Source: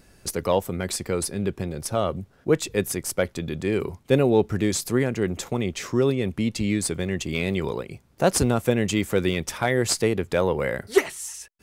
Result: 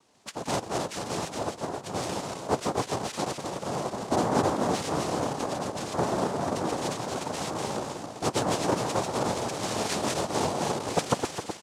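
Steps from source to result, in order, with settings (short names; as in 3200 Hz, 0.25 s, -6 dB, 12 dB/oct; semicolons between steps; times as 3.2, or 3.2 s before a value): regenerating reverse delay 0.13 s, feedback 67%, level -1.5 dB; echo 0.212 s -22 dB; noise vocoder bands 2; gain -8.5 dB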